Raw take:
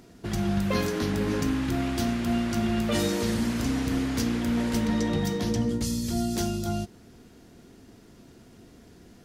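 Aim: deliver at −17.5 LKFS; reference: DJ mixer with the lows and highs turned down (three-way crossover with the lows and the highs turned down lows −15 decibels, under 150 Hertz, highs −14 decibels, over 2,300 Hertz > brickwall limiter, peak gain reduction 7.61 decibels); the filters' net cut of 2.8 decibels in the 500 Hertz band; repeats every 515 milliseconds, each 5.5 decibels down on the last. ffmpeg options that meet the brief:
ffmpeg -i in.wav -filter_complex "[0:a]acrossover=split=150 2300:gain=0.178 1 0.2[link_01][link_02][link_03];[link_01][link_02][link_03]amix=inputs=3:normalize=0,equalizer=frequency=500:width_type=o:gain=-3.5,aecho=1:1:515|1030|1545|2060|2575|3090|3605:0.531|0.281|0.149|0.079|0.0419|0.0222|0.0118,volume=15.5dB,alimiter=limit=-9dB:level=0:latency=1" out.wav

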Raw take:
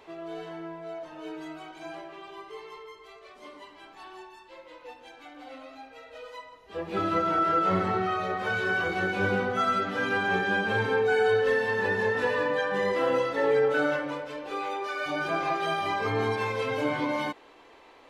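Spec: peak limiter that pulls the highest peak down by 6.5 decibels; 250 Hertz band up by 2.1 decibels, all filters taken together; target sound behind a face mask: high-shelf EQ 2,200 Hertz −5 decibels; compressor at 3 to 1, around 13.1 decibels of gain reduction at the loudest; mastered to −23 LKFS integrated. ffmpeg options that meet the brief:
ffmpeg -i in.wav -af "equalizer=frequency=250:width_type=o:gain=3,acompressor=threshold=-38dB:ratio=3,alimiter=level_in=7.5dB:limit=-24dB:level=0:latency=1,volume=-7.5dB,highshelf=frequency=2200:gain=-5,volume=18.5dB" out.wav

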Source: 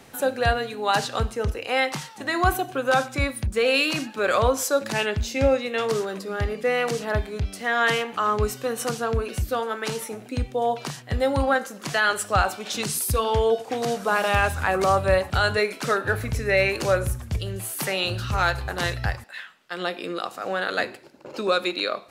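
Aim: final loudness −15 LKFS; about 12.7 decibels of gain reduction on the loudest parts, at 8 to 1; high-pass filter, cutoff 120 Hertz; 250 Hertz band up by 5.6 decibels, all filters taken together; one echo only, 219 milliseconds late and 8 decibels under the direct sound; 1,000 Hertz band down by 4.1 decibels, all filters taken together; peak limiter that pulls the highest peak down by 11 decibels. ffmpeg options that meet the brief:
ffmpeg -i in.wav -af "highpass=120,equalizer=frequency=250:width_type=o:gain=7.5,equalizer=frequency=1000:width_type=o:gain=-6.5,acompressor=threshold=-29dB:ratio=8,alimiter=level_in=4dB:limit=-24dB:level=0:latency=1,volume=-4dB,aecho=1:1:219:0.398,volume=21dB" out.wav

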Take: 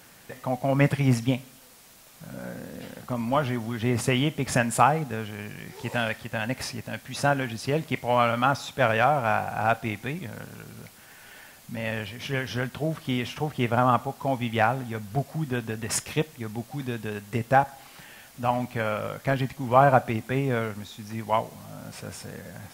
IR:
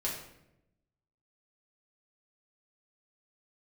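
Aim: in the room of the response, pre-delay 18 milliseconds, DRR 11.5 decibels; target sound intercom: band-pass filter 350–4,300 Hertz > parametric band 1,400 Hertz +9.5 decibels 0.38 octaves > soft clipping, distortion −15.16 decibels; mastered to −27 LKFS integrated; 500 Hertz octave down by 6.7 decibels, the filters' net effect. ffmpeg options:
-filter_complex "[0:a]equalizer=frequency=500:width_type=o:gain=-8.5,asplit=2[link_01][link_02];[1:a]atrim=start_sample=2205,adelay=18[link_03];[link_02][link_03]afir=irnorm=-1:irlink=0,volume=-15.5dB[link_04];[link_01][link_04]amix=inputs=2:normalize=0,highpass=350,lowpass=4300,equalizer=frequency=1400:width_type=o:width=0.38:gain=9.5,asoftclip=threshold=-13dB,volume=1.5dB"

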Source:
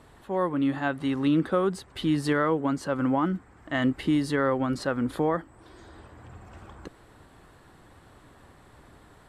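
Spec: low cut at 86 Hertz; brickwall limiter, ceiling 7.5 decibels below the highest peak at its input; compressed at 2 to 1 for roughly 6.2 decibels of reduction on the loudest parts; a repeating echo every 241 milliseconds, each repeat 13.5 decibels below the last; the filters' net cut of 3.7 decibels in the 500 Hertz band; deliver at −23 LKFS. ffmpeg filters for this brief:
ffmpeg -i in.wav -af "highpass=86,equalizer=frequency=500:width_type=o:gain=-4.5,acompressor=threshold=-32dB:ratio=2,alimiter=level_in=1dB:limit=-24dB:level=0:latency=1,volume=-1dB,aecho=1:1:241|482:0.211|0.0444,volume=12.5dB" out.wav

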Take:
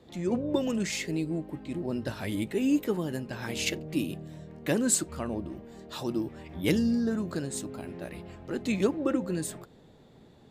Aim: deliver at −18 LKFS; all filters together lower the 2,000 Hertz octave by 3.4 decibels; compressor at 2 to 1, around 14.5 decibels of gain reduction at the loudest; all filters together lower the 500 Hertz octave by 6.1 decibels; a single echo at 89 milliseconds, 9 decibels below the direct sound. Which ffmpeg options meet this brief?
ffmpeg -i in.wav -af "equalizer=frequency=500:width_type=o:gain=-8,equalizer=frequency=2000:width_type=o:gain=-4,acompressor=threshold=-49dB:ratio=2,aecho=1:1:89:0.355,volume=26dB" out.wav

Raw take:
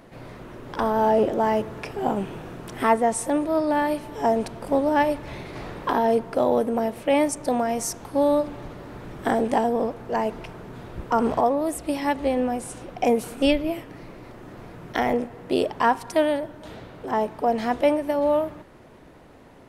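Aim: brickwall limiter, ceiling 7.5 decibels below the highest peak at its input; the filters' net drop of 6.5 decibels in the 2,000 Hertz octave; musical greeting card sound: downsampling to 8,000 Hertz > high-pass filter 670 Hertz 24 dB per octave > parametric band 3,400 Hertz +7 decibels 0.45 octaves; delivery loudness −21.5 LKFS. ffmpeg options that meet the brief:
ffmpeg -i in.wav -af "equalizer=frequency=2000:width_type=o:gain=-9,alimiter=limit=-17.5dB:level=0:latency=1,aresample=8000,aresample=44100,highpass=frequency=670:width=0.5412,highpass=frequency=670:width=1.3066,equalizer=frequency=3400:width_type=o:width=0.45:gain=7,volume=12dB" out.wav

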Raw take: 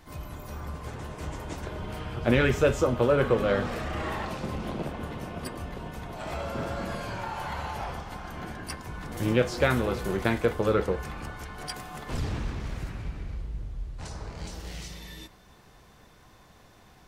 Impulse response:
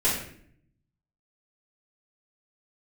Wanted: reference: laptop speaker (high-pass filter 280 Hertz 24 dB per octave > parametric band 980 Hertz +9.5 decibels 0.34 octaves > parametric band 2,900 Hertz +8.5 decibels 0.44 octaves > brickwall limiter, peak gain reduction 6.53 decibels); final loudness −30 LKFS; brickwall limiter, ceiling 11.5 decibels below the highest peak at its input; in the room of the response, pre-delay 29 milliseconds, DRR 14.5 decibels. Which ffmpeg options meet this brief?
-filter_complex "[0:a]alimiter=limit=-21dB:level=0:latency=1,asplit=2[link_01][link_02];[1:a]atrim=start_sample=2205,adelay=29[link_03];[link_02][link_03]afir=irnorm=-1:irlink=0,volume=-27dB[link_04];[link_01][link_04]amix=inputs=2:normalize=0,highpass=frequency=280:width=0.5412,highpass=frequency=280:width=1.3066,equalizer=frequency=980:width_type=o:width=0.34:gain=9.5,equalizer=frequency=2900:width_type=o:width=0.44:gain=8.5,volume=5dB,alimiter=limit=-17.5dB:level=0:latency=1"

